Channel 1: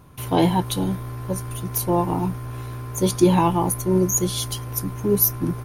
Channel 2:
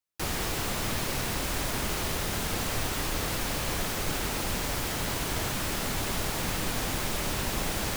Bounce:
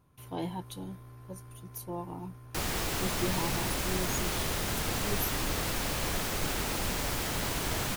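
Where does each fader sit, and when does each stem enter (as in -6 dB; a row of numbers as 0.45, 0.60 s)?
-17.5, -1.5 dB; 0.00, 2.35 s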